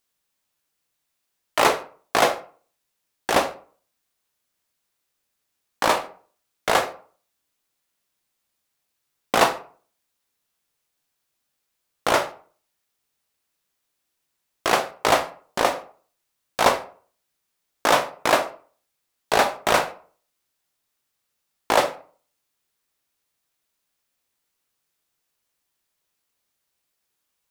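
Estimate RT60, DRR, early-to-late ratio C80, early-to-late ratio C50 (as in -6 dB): 0.45 s, 7.0 dB, 18.0 dB, 13.5 dB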